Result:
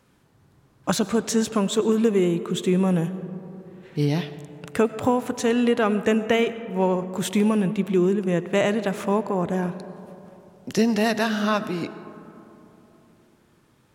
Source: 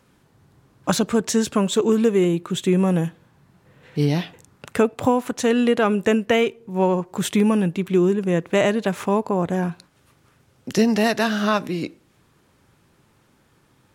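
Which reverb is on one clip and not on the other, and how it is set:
comb and all-pass reverb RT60 3.4 s, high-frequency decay 0.3×, pre-delay 60 ms, DRR 13 dB
level −2.5 dB

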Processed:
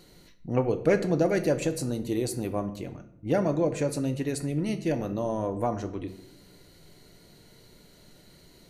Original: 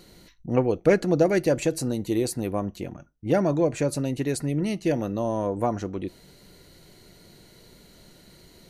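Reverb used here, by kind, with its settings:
rectangular room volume 190 cubic metres, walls mixed, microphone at 0.35 metres
level −3.5 dB

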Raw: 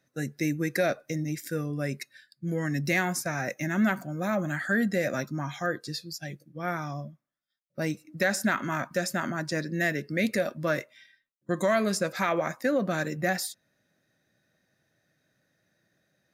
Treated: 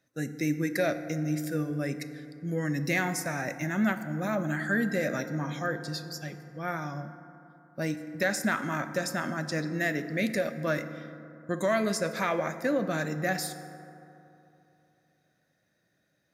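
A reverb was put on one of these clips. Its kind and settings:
feedback delay network reverb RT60 3 s, high-frequency decay 0.35×, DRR 9 dB
level −2 dB

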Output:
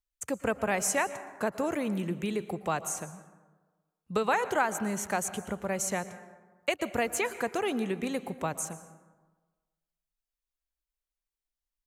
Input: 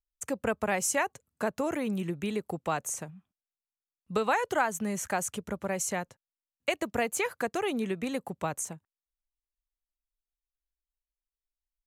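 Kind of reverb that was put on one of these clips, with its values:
dense smooth reverb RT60 1.3 s, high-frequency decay 0.45×, pre-delay 105 ms, DRR 13 dB

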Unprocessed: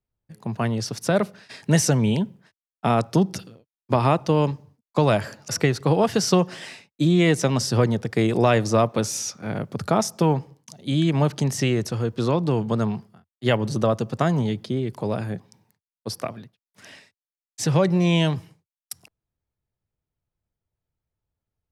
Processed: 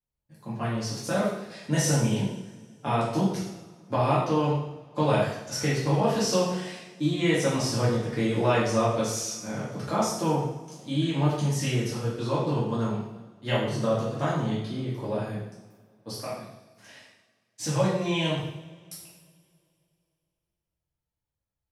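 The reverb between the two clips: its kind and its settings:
coupled-rooms reverb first 0.78 s, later 2.7 s, from −22 dB, DRR −9 dB
level −13 dB

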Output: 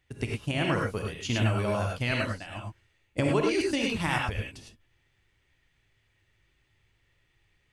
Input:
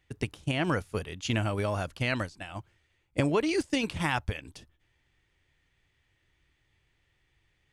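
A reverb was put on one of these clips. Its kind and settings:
reverb whose tail is shaped and stops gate 130 ms rising, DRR −0.5 dB
level −1.5 dB

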